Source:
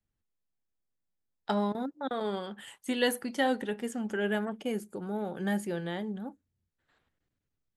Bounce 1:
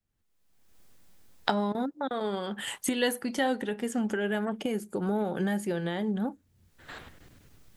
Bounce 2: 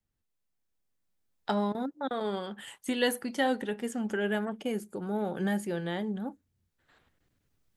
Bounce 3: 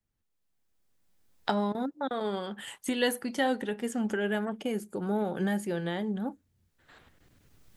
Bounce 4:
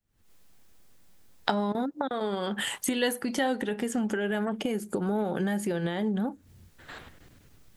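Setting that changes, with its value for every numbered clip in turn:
recorder AGC, rising by: 35 dB/s, 5.1 dB/s, 14 dB/s, 91 dB/s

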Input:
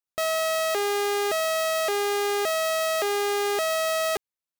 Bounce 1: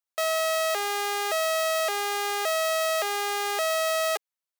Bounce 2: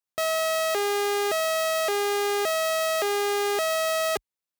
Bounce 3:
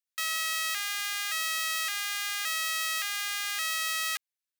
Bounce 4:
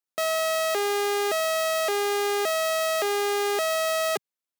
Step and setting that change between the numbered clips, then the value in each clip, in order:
high-pass, cutoff frequency: 510 Hz, 45 Hz, 1.5 kHz, 160 Hz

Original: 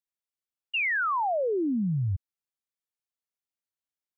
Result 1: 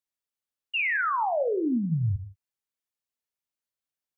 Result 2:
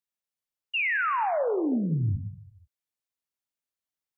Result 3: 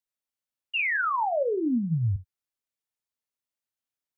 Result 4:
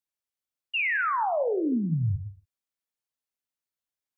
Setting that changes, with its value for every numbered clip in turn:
gated-style reverb, gate: 200 ms, 520 ms, 90 ms, 300 ms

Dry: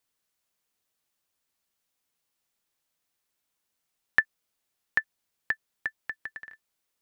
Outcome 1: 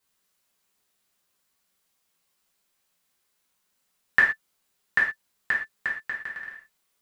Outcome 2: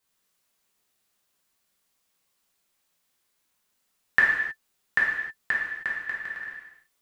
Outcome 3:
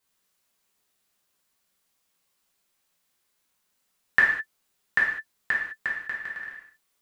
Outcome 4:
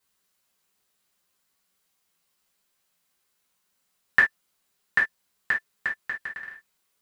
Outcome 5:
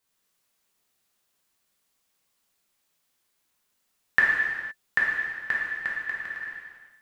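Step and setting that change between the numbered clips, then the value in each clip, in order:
gated-style reverb, gate: 150 ms, 340 ms, 230 ms, 90 ms, 540 ms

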